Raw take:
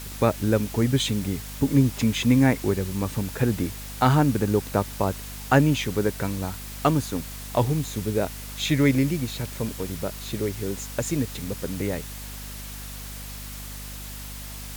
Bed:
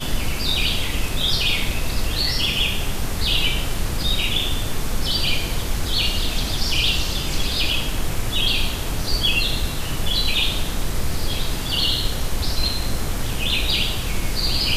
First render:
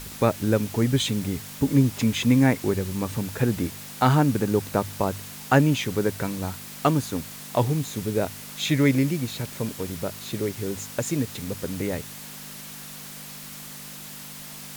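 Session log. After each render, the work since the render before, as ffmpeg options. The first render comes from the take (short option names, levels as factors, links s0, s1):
-af "bandreject=f=50:t=h:w=4,bandreject=f=100:t=h:w=4"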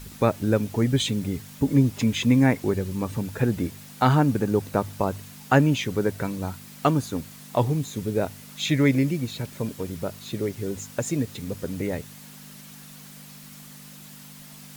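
-af "afftdn=nr=7:nf=-40"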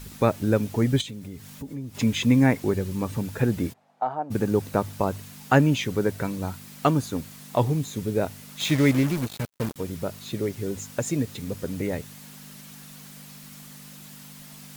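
-filter_complex "[0:a]asettb=1/sr,asplit=3[s0][s1][s2];[s0]atrim=end=1.014[s3];[s1]atrim=start=1.01:end=1.95,asetpts=PTS-STARTPTS,afade=t=in:d=0.004:c=qsin,afade=t=out:st=0.936:d=0.004:c=qsin,acompressor=threshold=0.0112:ratio=2.5:attack=3.2:release=140:knee=1:detection=peak[s4];[s2]atrim=start=1.946[s5];[s3][s4]acrossfade=d=0.004:c1=hsin:c2=qsin[s6];[s6][s5]acrossfade=d=0.004:c1=qsin:c2=hsin,asplit=3[s7][s8][s9];[s7]afade=t=out:st=3.72:d=0.02[s10];[s8]bandpass=f=720:t=q:w=4,afade=t=in:st=3.72:d=0.02,afade=t=out:st=4.3:d=0.02[s11];[s9]afade=t=in:st=4.3:d=0.02[s12];[s10][s11][s12]amix=inputs=3:normalize=0,asettb=1/sr,asplit=3[s13][s14][s15];[s13]atrim=end=8.604[s16];[s14]atrim=start=8.6:end=9.76,asetpts=PTS-STARTPTS,afade=t=in:d=0.004:c=qsin,afade=t=out:st=1.156:d=0.004:c=qsin,acrusher=bits=4:mix=0:aa=0.5[s17];[s15]atrim=start=9.756[s18];[s16][s17]acrossfade=d=0.004:c1=hsin:c2=qsin[s19];[s19][s18]acrossfade=d=0.004:c1=qsin:c2=hsin"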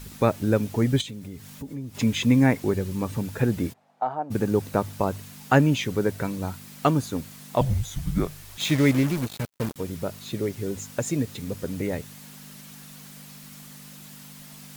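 -filter_complex "[0:a]asettb=1/sr,asplit=3[s0][s1][s2];[s0]atrim=end=7.614[s3];[s1]atrim=start=7.61:end=8.58,asetpts=PTS-STARTPTS,afade=t=in:d=0.004:c=qsin,afade=t=out:st=0.966:d=0.004:c=qsin,afreqshift=-250[s4];[s2]atrim=start=8.576[s5];[s3][s4]acrossfade=d=0.004:c1=hsin:c2=qsin[s6];[s6][s5]acrossfade=d=0.004:c1=qsin:c2=hsin"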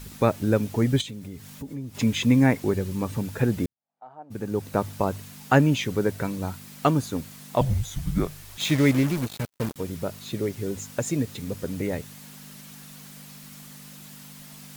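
-filter_complex "[0:a]asplit=2[s0][s1];[s0]atrim=end=3.66,asetpts=PTS-STARTPTS,afade=t=out:st=3.656:d=0.004:c=hsin[s2];[s1]atrim=start=3.66,asetpts=PTS-STARTPTS,afade=t=in:d=1.16:c=qua[s3];[s2][s3]concat=n=2:v=0:a=1"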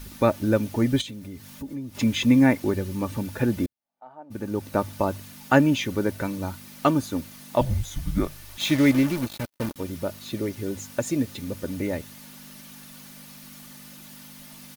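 -af "equalizer=f=7600:w=5.3:g=-5.5,aecho=1:1:3.4:0.4"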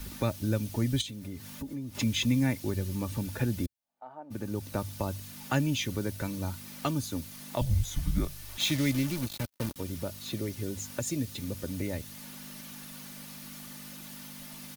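-filter_complex "[0:a]acrossover=split=150|3000[s0][s1][s2];[s1]acompressor=threshold=0.01:ratio=2[s3];[s0][s3][s2]amix=inputs=3:normalize=0"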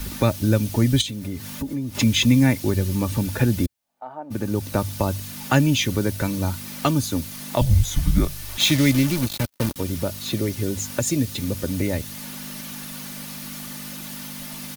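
-af "volume=3.16"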